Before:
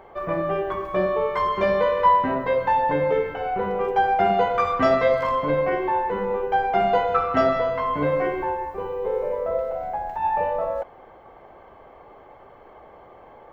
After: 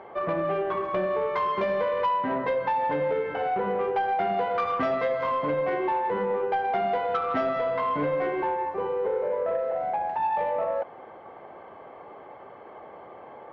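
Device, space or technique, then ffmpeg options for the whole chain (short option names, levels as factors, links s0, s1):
AM radio: -af "highpass=140,lowpass=3600,acompressor=threshold=0.0562:ratio=4,asoftclip=type=tanh:threshold=0.0944,volume=1.33"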